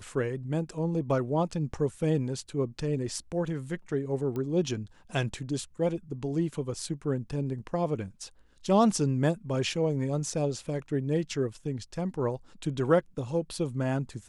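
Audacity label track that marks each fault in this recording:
4.360000	4.360000	pop -23 dBFS

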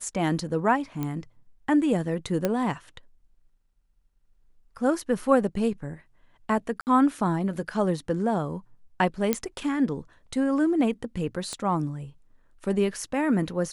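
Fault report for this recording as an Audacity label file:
1.030000	1.030000	pop -17 dBFS
2.450000	2.450000	pop -11 dBFS
6.810000	6.870000	dropout 59 ms
9.330000	9.330000	pop -8 dBFS
11.530000	11.530000	pop -20 dBFS

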